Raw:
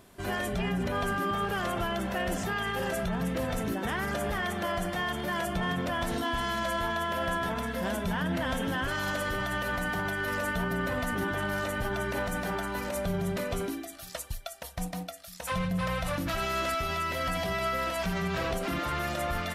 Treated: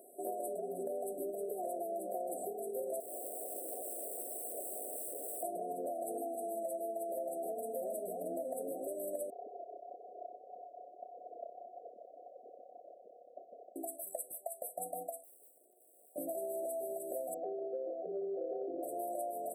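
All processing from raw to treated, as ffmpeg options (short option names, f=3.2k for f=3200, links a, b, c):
-filter_complex "[0:a]asettb=1/sr,asplit=3[a][b][c];[a]atrim=end=3.004[d];[b]atrim=start=3:end=5.43,asetpts=PTS-STARTPTS,afade=t=in:d=0.004:c=qsin,afade=t=out:st=2.426:d=0.004:c=qsin,highshelf=f=2.1k:g=-12,asplit=2[e][f];[f]adelay=216,lowpass=f=980:p=1,volume=-5dB,asplit=2[g][h];[h]adelay=216,lowpass=f=980:p=1,volume=0.22,asplit=2[i][j];[j]adelay=216,lowpass=f=980:p=1,volume=0.22[k];[e][g][i][k]amix=inputs=4:normalize=0,atrim=end_sample=107163,aeval=exprs='(mod(50.1*val(0)+1,2)-1)/50.1':c=same[l];[c]atrim=start=5.426[m];[d][l]acrossfade=d=0.004:c1=hsin:c2=qsin[n];[n][m]acrossfade=d=0.004:c1=qsin:c2=hsin,asettb=1/sr,asplit=3[o][p][q];[o]atrim=end=9.304[r];[p]atrim=start=9.3:end=13.76,asetpts=PTS-STARTPTS,afade=t=in:d=0.004:c=qsin,afade=t=out:st=4.456:d=0.004:c=qsin,aphaser=in_gain=1:out_gain=1:delay=2.9:decay=0.67:speed=1.8:type=triangular,acrossover=split=2200[s][t];[s]adelay=430[u];[u][t]amix=inputs=2:normalize=0,atrim=end_sample=196686,lowpass=f=3.1k:t=q:w=0.5098,lowpass=f=3.1k:t=q:w=0.6013,lowpass=f=3.1k:t=q:w=0.9,lowpass=f=3.1k:t=q:w=2.563,afreqshift=-3700[v];[q]atrim=start=13.756[w];[r][v]acrossfade=d=0.004:c1=hsin:c2=qsin[x];[x][w]acrossfade=d=0.004:c1=qsin:c2=hsin,asettb=1/sr,asplit=3[y][z][aa];[y]atrim=end=15.244[ab];[z]atrim=start=15.24:end=16.16,asetpts=PTS-STARTPTS,afade=t=in:d=0.004:c=qsin,afade=t=out:st=0.916:d=0.004:c=qsin,aeval=exprs='abs(val(0))':c=same,aeval=exprs='(tanh(158*val(0)+0.5)-tanh(0.5))/158':c=same[ac];[aa]atrim=start=16.156[ad];[ab][ac]acrossfade=d=0.004:c1=hsin:c2=qsin[ae];[ae][ad]acrossfade=d=0.004:c1=qsin:c2=hsin,asettb=1/sr,asplit=3[af][ag][ah];[af]atrim=end=17.344[ai];[ag]atrim=start=17.34:end=18.83,asetpts=PTS-STARTPTS,afade=t=in:d=0.004:c=qsin,afade=t=out:st=1.486:d=0.004:c=qsin,lowpass=f=1.2k:w=0.5412,lowpass=f=1.2k:w=1.3066,aecho=1:1:2.3:0.72,atrim=end_sample=65709[aj];[ah]atrim=start=18.826[ak];[ai][aj]acrossfade=d=0.004:c1=hsin:c2=qsin[al];[al][ak]acrossfade=d=0.004:c1=qsin:c2=hsin,highpass=f=380:w=0.5412,highpass=f=380:w=1.3066,afftfilt=real='re*(1-between(b*sr/4096,760,7700))':imag='im*(1-between(b*sr/4096,760,7700))':win_size=4096:overlap=0.75,acompressor=threshold=-40dB:ratio=5,volume=3.5dB"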